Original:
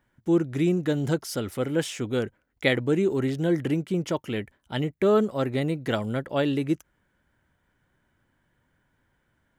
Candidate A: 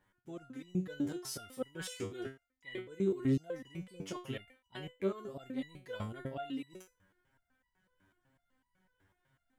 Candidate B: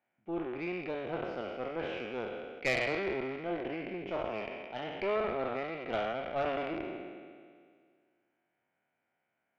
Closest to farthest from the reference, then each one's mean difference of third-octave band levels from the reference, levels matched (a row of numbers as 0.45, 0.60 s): A, B; 7.5, 10.5 dB